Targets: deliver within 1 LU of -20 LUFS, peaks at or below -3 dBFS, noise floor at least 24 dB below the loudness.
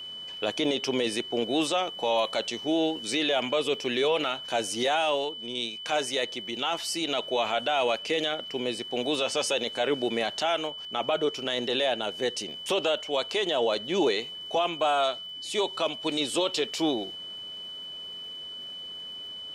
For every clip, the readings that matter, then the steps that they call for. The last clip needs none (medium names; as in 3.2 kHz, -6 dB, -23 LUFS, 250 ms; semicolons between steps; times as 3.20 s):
tick rate 50 per s; steady tone 3 kHz; tone level -37 dBFS; loudness -28.0 LUFS; peak level -15.0 dBFS; loudness target -20.0 LUFS
-> de-click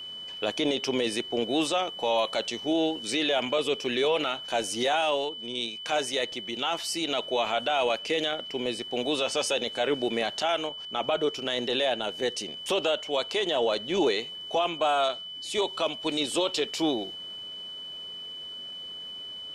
tick rate 0.10 per s; steady tone 3 kHz; tone level -37 dBFS
-> band-stop 3 kHz, Q 30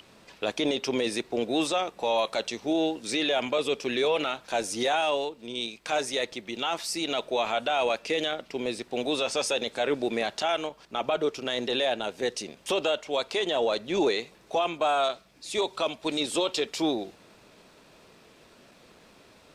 steady tone not found; loudness -28.5 LUFS; peak level -16.0 dBFS; loudness target -20.0 LUFS
-> trim +8.5 dB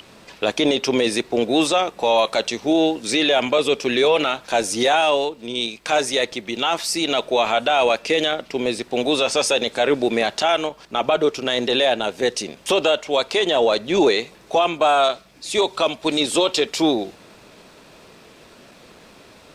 loudness -20.0 LUFS; peak level -7.5 dBFS; noise floor -48 dBFS